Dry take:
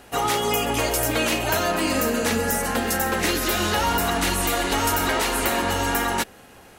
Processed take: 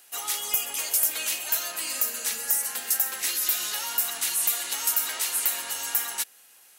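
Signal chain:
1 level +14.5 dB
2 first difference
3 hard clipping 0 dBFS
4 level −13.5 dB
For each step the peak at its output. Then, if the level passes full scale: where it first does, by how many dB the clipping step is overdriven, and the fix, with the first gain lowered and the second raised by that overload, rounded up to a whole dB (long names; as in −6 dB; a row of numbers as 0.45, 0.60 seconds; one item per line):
+4.5, +7.5, 0.0, −13.5 dBFS
step 1, 7.5 dB
step 1 +6.5 dB, step 4 −5.5 dB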